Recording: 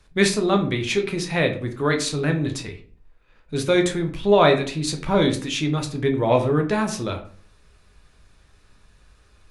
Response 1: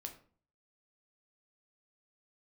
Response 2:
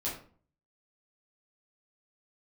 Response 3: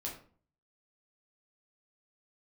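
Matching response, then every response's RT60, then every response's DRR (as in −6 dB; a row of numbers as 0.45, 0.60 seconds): 1; 0.45, 0.45, 0.45 seconds; 4.0, −7.5, −3.0 decibels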